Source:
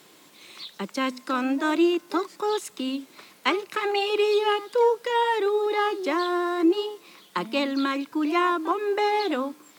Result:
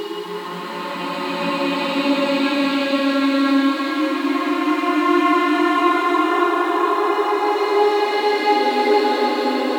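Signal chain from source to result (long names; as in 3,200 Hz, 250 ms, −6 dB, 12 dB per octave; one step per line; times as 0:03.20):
extreme stretch with random phases 4.1×, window 1.00 s, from 0:07.03
level +7 dB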